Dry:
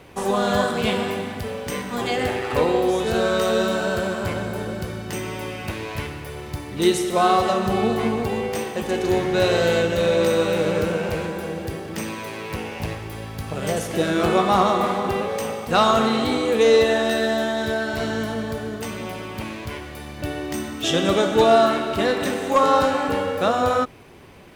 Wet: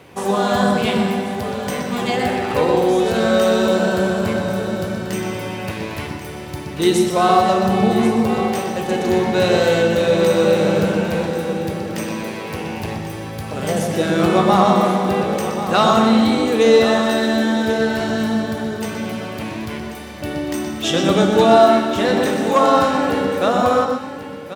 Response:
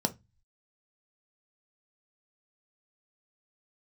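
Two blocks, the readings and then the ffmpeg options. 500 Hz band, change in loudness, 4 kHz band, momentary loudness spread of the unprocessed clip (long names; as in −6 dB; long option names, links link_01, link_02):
+4.0 dB, +4.5 dB, +2.5 dB, 13 LU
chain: -filter_complex "[0:a]highpass=82,aecho=1:1:1087:0.251,asplit=2[link_01][link_02];[1:a]atrim=start_sample=2205,adelay=122[link_03];[link_02][link_03]afir=irnorm=-1:irlink=0,volume=-13.5dB[link_04];[link_01][link_04]amix=inputs=2:normalize=0,volume=2dB"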